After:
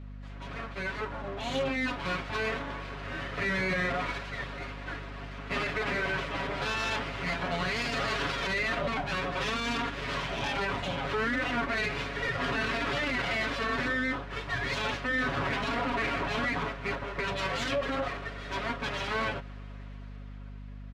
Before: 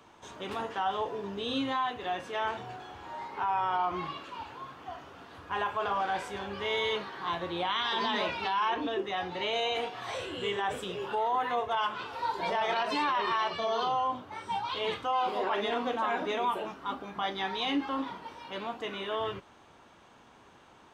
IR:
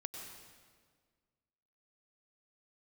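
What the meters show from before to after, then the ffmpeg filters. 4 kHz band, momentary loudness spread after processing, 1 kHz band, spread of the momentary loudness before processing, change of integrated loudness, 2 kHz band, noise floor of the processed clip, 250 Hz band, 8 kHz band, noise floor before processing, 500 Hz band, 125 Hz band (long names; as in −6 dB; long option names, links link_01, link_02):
−0.5 dB, 10 LU, −4.5 dB, 12 LU, +0.5 dB, +7.0 dB, −43 dBFS, +3.0 dB, +6.5 dB, −57 dBFS, −0.5 dB, +12.0 dB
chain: -af "dynaudnorm=framelen=420:gausssize=7:maxgain=10dB,lowpass=3000,equalizer=frequency=760:width=1.5:gain=-2.5,aeval=exprs='abs(val(0))':channel_layout=same,highpass=57,aemphasis=mode=reproduction:type=50fm,aecho=1:1:7.2:0.92,alimiter=limit=-20.5dB:level=0:latency=1:release=30,aeval=exprs='val(0)+0.01*(sin(2*PI*50*n/s)+sin(2*PI*2*50*n/s)/2+sin(2*PI*3*50*n/s)/3+sin(2*PI*4*50*n/s)/4+sin(2*PI*5*50*n/s)/5)':channel_layout=same,bandreject=frequency=830:width=12,volume=-1.5dB"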